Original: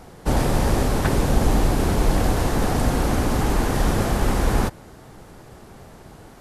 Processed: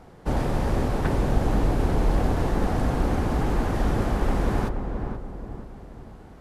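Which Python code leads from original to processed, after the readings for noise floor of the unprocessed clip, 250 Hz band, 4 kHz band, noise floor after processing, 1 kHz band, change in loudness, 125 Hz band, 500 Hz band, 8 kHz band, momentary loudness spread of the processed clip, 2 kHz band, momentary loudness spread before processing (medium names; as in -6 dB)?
-45 dBFS, -3.0 dB, -9.5 dB, -47 dBFS, -4.0 dB, -4.0 dB, -3.0 dB, -3.5 dB, -13.5 dB, 15 LU, -6.0 dB, 2 LU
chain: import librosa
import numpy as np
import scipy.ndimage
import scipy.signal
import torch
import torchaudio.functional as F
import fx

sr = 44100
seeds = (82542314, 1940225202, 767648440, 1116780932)

p1 = fx.high_shelf(x, sr, hz=4300.0, db=-11.5)
p2 = p1 + fx.echo_filtered(p1, sr, ms=478, feedback_pct=46, hz=1200.0, wet_db=-5.5, dry=0)
y = p2 * librosa.db_to_amplitude(-4.5)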